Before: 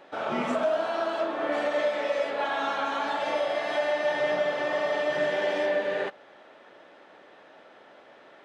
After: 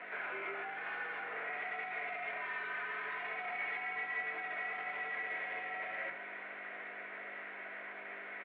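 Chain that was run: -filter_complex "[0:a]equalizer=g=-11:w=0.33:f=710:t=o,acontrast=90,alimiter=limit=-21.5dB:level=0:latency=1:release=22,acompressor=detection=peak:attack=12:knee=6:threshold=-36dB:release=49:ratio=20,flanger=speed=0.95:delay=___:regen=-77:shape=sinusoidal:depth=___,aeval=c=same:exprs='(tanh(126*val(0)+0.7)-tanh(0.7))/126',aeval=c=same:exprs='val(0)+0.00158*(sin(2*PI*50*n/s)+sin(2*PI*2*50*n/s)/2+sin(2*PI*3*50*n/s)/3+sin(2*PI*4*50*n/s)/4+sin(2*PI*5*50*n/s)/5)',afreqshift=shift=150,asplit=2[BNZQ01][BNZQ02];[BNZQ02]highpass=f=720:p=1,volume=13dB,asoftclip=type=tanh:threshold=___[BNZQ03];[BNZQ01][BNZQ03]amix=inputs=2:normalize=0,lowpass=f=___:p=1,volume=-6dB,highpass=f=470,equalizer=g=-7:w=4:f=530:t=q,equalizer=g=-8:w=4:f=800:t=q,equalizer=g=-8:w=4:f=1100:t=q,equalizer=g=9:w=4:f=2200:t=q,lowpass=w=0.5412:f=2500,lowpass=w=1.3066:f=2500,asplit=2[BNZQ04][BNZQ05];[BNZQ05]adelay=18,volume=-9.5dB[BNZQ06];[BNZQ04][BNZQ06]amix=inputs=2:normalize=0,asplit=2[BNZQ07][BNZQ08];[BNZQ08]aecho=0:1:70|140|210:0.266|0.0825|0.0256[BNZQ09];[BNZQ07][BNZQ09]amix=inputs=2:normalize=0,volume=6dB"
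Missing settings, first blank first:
7.3, 1.3, -33.5dB, 1400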